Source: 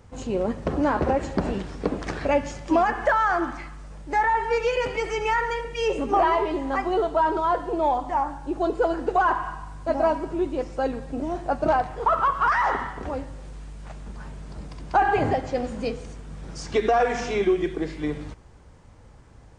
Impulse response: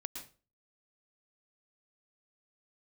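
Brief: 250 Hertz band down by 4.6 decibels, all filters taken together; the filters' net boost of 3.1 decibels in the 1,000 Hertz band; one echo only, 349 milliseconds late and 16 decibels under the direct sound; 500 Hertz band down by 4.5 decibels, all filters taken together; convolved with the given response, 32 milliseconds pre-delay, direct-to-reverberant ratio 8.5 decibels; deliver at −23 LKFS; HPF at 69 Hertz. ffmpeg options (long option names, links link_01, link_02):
-filter_complex "[0:a]highpass=69,equalizer=frequency=250:width_type=o:gain=-3.5,equalizer=frequency=500:width_type=o:gain=-7.5,equalizer=frequency=1000:width_type=o:gain=6.5,aecho=1:1:349:0.158,asplit=2[link_01][link_02];[1:a]atrim=start_sample=2205,adelay=32[link_03];[link_02][link_03]afir=irnorm=-1:irlink=0,volume=-6.5dB[link_04];[link_01][link_04]amix=inputs=2:normalize=0"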